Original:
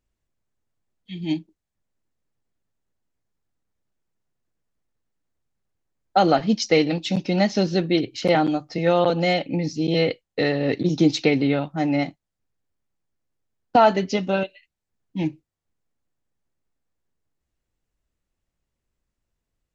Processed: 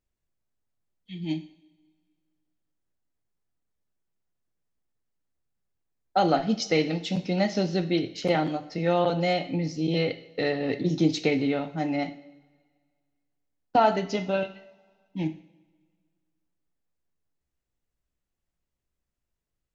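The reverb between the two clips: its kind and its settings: two-slope reverb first 0.58 s, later 1.9 s, from -18 dB, DRR 8.5 dB; gain -5.5 dB

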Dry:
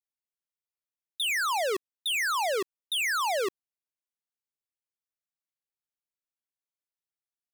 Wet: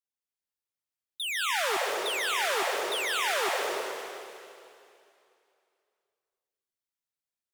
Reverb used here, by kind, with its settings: plate-style reverb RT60 2.6 s, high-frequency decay 1×, pre-delay 0.12 s, DRR -3 dB; gain -4.5 dB

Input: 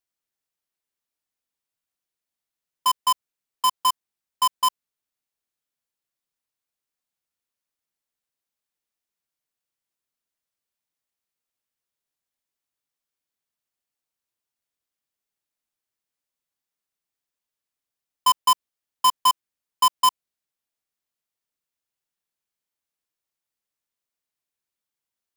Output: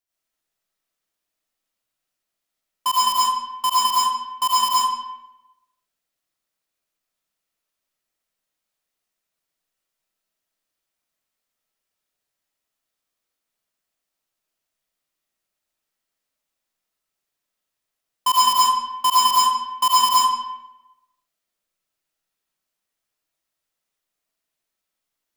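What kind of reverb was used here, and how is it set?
digital reverb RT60 0.97 s, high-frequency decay 0.75×, pre-delay 55 ms, DRR -8 dB; gain -1.5 dB

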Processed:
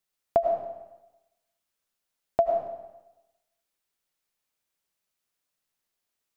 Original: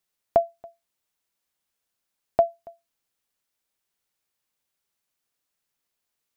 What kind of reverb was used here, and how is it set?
digital reverb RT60 1 s, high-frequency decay 0.9×, pre-delay 60 ms, DRR 3 dB; gain -3 dB

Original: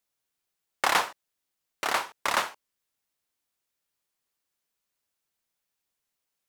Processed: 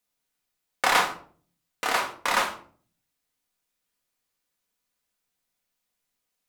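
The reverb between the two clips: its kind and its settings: shoebox room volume 390 m³, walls furnished, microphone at 1.9 m

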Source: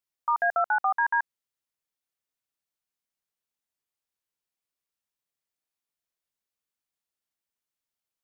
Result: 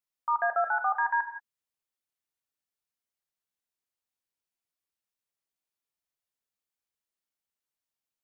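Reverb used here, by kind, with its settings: non-linear reverb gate 0.2 s flat, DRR 7 dB; gain -3.5 dB

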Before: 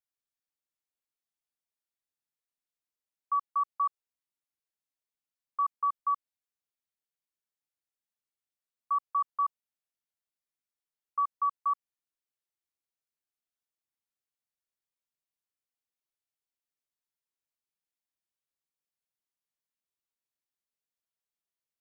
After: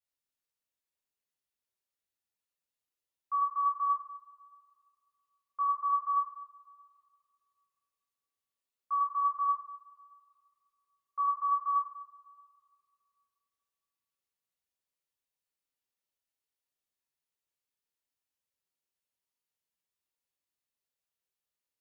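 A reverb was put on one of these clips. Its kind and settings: two-slope reverb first 0.62 s, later 2.4 s, from -21 dB, DRR -6.5 dB; gain -6.5 dB

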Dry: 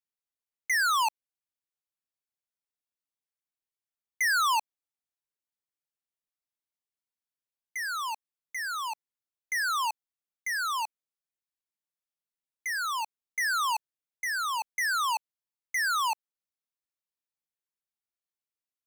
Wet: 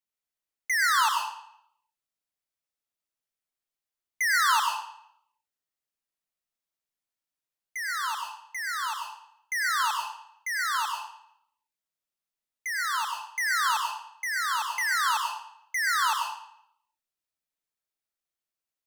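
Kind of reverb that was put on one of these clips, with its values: digital reverb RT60 0.7 s, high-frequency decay 0.9×, pre-delay 65 ms, DRR 1 dB

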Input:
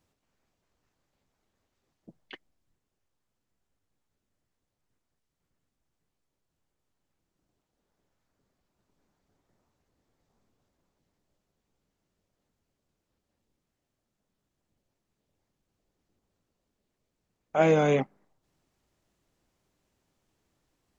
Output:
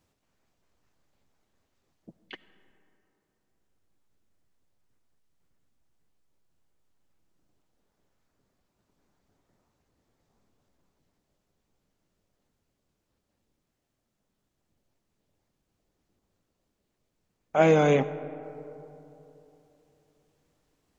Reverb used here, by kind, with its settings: digital reverb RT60 3.3 s, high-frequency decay 0.35×, pre-delay 35 ms, DRR 15 dB; gain +2 dB

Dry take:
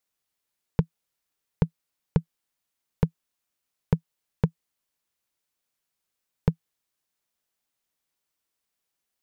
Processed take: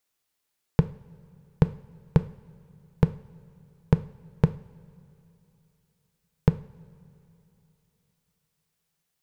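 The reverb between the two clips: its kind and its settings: two-slope reverb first 0.47 s, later 3.3 s, from -18 dB, DRR 11 dB; gain +3 dB

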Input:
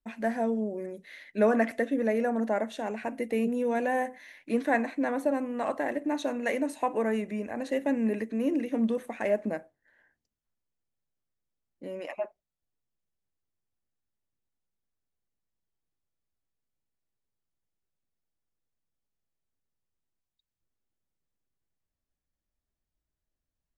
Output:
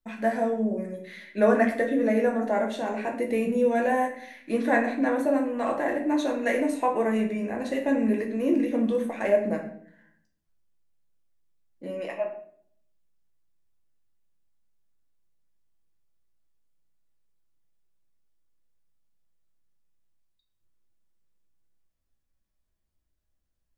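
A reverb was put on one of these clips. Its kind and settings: shoebox room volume 85 m³, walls mixed, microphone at 0.7 m; gain +1 dB

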